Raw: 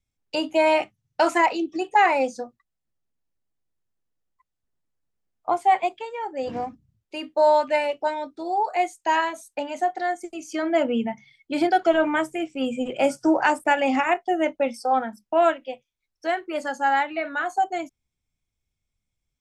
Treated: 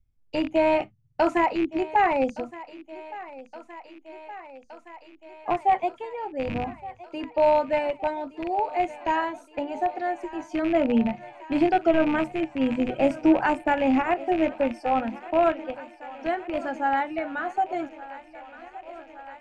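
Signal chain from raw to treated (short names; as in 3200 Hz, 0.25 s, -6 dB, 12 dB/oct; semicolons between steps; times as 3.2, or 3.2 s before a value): rattling part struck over -38 dBFS, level -18 dBFS; RIAA curve playback; thinning echo 1.168 s, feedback 80%, high-pass 290 Hz, level -17 dB; gain -3.5 dB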